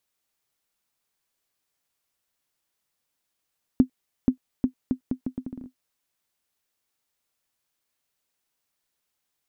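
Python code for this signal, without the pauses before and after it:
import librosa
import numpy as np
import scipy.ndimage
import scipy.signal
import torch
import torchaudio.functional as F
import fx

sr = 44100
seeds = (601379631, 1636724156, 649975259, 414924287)

y = fx.bouncing_ball(sr, first_gap_s=0.48, ratio=0.75, hz=256.0, decay_ms=97.0, level_db=-6.5)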